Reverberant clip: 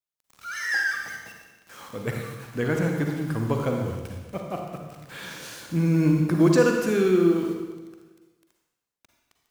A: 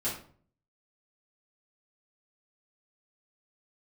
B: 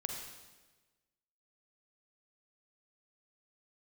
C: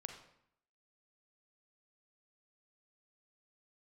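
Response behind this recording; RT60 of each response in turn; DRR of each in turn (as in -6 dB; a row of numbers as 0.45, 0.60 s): B; 0.50, 1.2, 0.70 s; -10.5, 1.5, 4.5 dB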